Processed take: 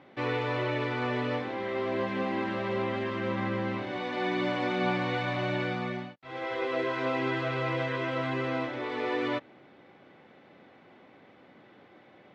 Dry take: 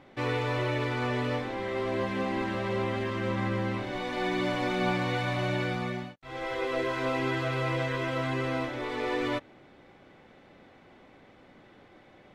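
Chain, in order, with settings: BPF 130–4300 Hz

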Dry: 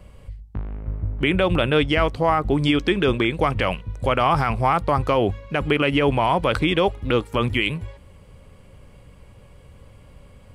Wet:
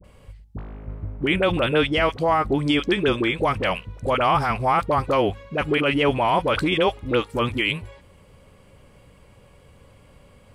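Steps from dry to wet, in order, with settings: low shelf 130 Hz -8 dB; dispersion highs, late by 41 ms, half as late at 760 Hz

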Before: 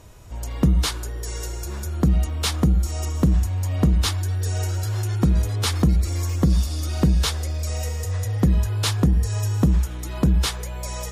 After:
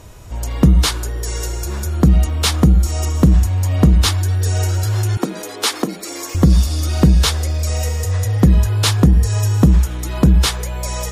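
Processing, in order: 5.17–6.35 HPF 270 Hz 24 dB/oct; gain +7 dB

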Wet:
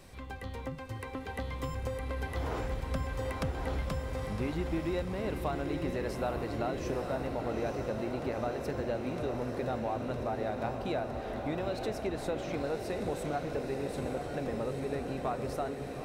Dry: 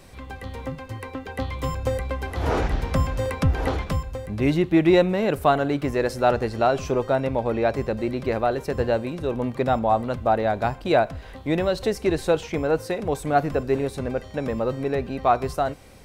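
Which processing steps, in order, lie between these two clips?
compressor 4:1, threshold -28 dBFS, peak gain reduction 13.5 dB; diffused feedback echo 0.903 s, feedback 72%, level -5 dB; gain -5.5 dB

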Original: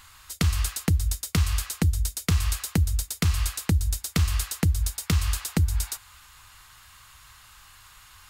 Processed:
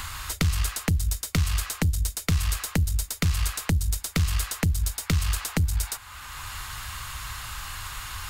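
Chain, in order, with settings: one diode to ground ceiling -20 dBFS; three-band squash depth 70%; gain +1.5 dB

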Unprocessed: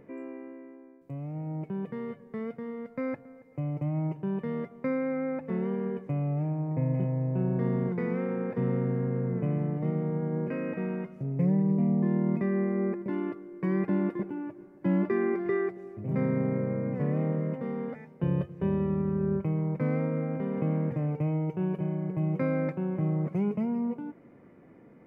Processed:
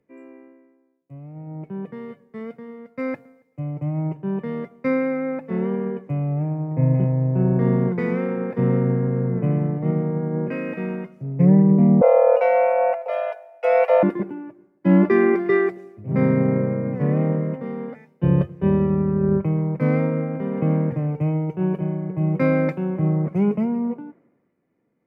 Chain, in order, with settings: 12.01–14.03 frequency shift +320 Hz; added harmonics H 6 -45 dB, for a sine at -15.5 dBFS; three-band expander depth 100%; gain +8.5 dB

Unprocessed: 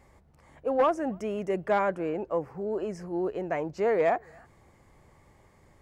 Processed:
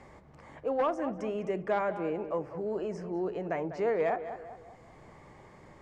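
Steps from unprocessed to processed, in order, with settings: LPF 6700 Hz 12 dB/oct; tape echo 0.198 s, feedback 36%, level -11 dB, low-pass 2000 Hz; on a send at -15 dB: reverb RT60 0.35 s, pre-delay 6 ms; on the sum: three-band squash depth 40%; gain -3.5 dB

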